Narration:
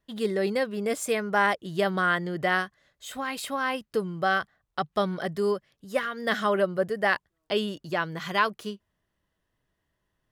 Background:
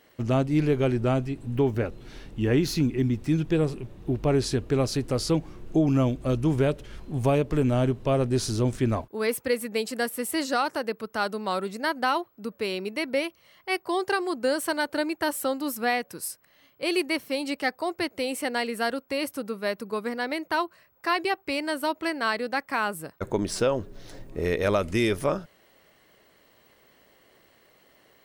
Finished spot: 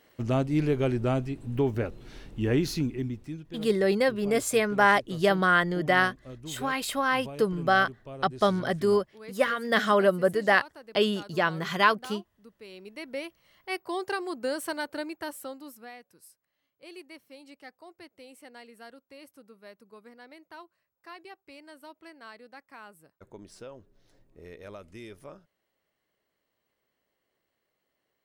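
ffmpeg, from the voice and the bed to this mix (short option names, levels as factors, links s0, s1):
-filter_complex "[0:a]adelay=3450,volume=1.33[s0];[1:a]volume=3.35,afade=t=out:st=2.61:d=0.82:silence=0.158489,afade=t=in:st=12.63:d=0.96:silence=0.223872,afade=t=out:st=14.71:d=1.18:silence=0.177828[s1];[s0][s1]amix=inputs=2:normalize=0"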